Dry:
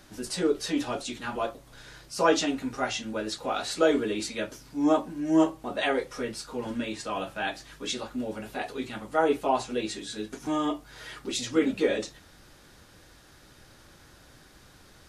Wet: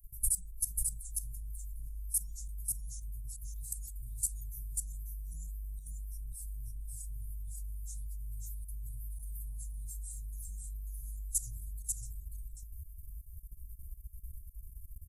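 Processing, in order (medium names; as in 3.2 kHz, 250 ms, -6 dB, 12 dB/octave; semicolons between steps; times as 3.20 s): expander on every frequency bin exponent 1.5; inverse Chebyshev band-stop 260–3000 Hz, stop band 70 dB; level held to a coarse grid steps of 17 dB; tone controls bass +11 dB, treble +10 dB; on a send: delay 541 ms -3.5 dB; on the sum: trim +13 dB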